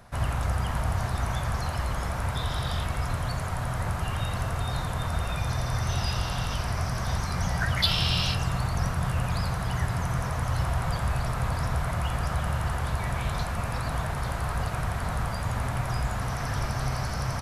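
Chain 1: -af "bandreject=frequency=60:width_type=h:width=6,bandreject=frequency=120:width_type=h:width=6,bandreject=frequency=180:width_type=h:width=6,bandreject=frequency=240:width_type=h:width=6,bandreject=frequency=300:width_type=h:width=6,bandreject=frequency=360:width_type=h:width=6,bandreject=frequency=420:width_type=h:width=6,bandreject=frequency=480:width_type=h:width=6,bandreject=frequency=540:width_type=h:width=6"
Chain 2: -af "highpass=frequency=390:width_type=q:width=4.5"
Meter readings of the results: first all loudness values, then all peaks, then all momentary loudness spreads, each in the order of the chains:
−30.0, −31.5 LKFS; −9.0, −9.5 dBFS; 3, 3 LU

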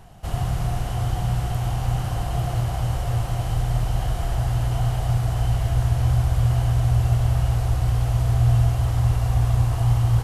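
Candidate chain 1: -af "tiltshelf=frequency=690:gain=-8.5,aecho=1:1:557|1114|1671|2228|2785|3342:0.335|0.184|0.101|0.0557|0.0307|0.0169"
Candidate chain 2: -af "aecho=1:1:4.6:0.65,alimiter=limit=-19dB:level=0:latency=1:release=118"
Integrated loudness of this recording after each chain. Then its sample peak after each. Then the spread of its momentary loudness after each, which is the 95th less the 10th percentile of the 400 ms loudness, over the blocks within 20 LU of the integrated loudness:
−27.0, −30.0 LKFS; −12.0, −19.0 dBFS; 4, 2 LU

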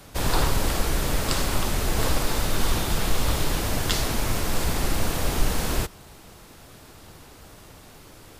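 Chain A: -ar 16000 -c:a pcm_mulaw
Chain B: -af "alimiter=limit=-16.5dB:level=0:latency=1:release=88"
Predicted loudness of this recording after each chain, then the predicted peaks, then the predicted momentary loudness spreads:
−26.5, −29.0 LKFS; −7.0, −16.5 dBFS; 2, 19 LU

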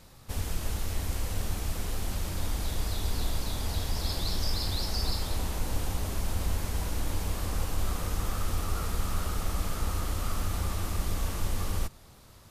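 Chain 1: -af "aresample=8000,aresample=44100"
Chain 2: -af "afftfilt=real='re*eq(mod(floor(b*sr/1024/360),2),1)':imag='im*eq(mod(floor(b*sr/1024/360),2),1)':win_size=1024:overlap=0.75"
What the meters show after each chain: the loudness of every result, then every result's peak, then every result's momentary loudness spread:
−34.5, −40.5 LKFS; −16.5, −25.0 dBFS; 2, 6 LU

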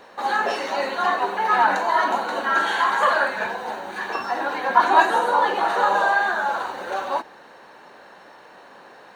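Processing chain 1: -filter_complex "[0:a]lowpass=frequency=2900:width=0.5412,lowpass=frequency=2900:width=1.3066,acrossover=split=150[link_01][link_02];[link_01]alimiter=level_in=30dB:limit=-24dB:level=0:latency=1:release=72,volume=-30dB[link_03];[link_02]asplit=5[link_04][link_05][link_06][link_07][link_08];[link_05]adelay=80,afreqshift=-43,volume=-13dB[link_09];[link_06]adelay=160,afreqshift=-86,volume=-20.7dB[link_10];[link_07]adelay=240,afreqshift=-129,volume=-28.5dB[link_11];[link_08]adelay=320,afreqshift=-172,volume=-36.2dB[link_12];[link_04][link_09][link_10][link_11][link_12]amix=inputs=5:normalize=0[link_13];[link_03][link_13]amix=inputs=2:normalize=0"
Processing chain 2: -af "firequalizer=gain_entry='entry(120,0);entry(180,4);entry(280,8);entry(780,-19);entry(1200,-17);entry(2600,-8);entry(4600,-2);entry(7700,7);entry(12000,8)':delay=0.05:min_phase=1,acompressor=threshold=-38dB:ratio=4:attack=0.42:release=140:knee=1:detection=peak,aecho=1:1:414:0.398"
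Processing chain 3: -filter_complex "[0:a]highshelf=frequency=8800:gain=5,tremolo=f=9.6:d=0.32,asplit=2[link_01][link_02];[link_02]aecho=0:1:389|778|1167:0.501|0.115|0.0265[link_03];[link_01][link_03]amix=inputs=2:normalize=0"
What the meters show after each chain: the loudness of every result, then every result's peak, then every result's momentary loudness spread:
−21.0, −42.0, −21.5 LKFS; −2.0, −29.5, −1.0 dBFS; 11, 10, 10 LU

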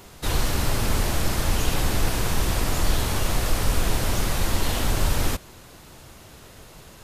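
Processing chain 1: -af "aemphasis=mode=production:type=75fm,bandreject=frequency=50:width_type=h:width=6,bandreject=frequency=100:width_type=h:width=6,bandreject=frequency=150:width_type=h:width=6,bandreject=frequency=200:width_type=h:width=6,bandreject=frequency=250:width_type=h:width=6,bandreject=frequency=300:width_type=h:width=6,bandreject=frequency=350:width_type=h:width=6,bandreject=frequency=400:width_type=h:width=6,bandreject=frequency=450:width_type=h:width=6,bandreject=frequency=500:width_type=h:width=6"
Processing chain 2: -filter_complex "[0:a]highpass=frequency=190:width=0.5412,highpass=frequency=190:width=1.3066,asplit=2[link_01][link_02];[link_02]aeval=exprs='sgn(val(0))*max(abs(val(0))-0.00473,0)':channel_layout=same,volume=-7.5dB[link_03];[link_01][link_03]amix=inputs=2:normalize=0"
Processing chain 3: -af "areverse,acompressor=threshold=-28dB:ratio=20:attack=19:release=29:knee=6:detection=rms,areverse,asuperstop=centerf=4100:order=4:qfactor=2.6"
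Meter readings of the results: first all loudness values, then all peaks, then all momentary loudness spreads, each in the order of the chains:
−17.5, −25.0, −32.5 LKFS; −4.5, −12.5, −17.5 dBFS; 20, 1, 14 LU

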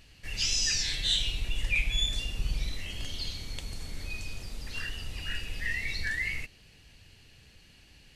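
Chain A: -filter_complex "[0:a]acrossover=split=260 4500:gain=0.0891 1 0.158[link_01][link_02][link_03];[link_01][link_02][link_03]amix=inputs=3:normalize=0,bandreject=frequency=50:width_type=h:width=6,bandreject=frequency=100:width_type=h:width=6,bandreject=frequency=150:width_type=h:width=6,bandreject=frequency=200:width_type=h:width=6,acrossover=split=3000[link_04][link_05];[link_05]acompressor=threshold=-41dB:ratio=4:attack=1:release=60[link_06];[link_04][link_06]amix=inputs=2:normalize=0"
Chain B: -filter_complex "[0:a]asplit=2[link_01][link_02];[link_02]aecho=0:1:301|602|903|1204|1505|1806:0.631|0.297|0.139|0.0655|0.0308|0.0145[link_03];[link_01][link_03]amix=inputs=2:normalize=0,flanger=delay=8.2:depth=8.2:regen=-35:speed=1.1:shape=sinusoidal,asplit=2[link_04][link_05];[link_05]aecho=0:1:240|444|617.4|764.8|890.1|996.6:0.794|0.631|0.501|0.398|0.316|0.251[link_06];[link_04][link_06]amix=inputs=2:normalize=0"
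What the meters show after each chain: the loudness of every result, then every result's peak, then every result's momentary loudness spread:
−36.0, −30.0 LKFS; −22.0, −13.0 dBFS; 14, 12 LU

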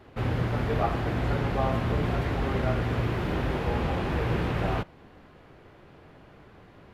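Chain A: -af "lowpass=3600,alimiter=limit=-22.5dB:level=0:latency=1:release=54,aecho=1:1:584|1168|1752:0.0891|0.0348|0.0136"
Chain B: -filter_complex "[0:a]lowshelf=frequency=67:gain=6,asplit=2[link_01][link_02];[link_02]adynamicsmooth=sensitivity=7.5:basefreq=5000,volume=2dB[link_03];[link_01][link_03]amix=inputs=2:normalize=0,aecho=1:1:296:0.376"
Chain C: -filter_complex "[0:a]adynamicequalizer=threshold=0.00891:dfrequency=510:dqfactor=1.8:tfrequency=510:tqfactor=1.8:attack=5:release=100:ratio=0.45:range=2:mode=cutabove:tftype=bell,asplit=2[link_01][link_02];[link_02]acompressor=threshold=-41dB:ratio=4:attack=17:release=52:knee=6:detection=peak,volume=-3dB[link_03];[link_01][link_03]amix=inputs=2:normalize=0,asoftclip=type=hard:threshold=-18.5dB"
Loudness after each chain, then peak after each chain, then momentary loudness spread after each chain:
−31.5, −19.5, −27.5 LKFS; −22.0, −5.0, −18.5 dBFS; 10, 3, 1 LU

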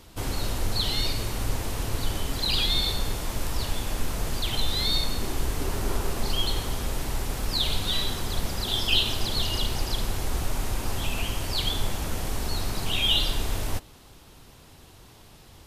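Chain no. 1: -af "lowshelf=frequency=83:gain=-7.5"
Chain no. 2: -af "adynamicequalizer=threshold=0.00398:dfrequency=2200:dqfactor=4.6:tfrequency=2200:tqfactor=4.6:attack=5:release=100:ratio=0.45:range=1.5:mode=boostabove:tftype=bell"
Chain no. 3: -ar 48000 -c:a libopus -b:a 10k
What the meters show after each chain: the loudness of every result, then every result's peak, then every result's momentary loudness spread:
−28.5, −28.0, −28.5 LKFS; −9.5, −8.5, −8.5 dBFS; 10, 9, 9 LU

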